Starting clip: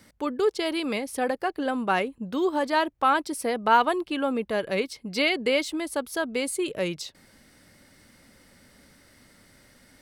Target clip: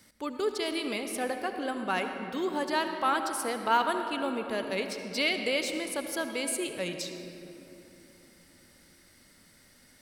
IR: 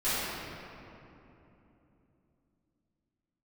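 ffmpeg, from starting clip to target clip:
-filter_complex "[0:a]highshelf=frequency=2600:gain=7.5,asplit=2[link_01][link_02];[1:a]atrim=start_sample=2205,adelay=62[link_03];[link_02][link_03]afir=irnorm=-1:irlink=0,volume=-18dB[link_04];[link_01][link_04]amix=inputs=2:normalize=0,volume=-7dB"

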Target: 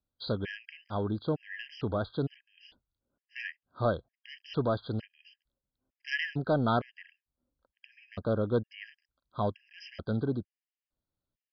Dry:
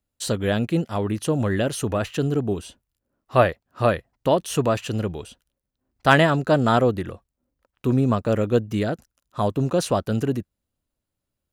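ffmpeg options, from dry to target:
ffmpeg -i in.wav -af "aresample=11025,asoftclip=type=tanh:threshold=-11.5dB,aresample=44100,afftfilt=real='re*gt(sin(2*PI*1.1*pts/sr)*(1-2*mod(floor(b*sr/1024/1600),2)),0)':imag='im*gt(sin(2*PI*1.1*pts/sr)*(1-2*mod(floor(b*sr/1024/1600),2)),0)':win_size=1024:overlap=0.75,volume=-6.5dB" out.wav

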